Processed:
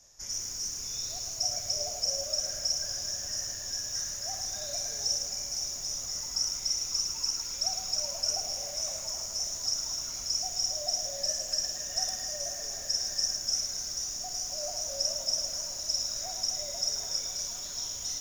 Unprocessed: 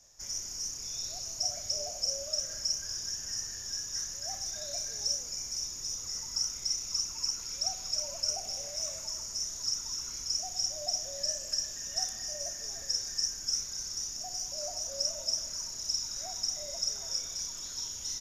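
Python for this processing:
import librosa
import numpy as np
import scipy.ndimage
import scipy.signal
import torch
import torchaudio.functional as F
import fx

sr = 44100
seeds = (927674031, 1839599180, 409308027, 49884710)

y = fx.echo_banded(x, sr, ms=257, feedback_pct=85, hz=740.0, wet_db=-11.0)
y = fx.echo_crushed(y, sr, ms=109, feedback_pct=35, bits=8, wet_db=-5.5)
y = y * librosa.db_to_amplitude(1.5)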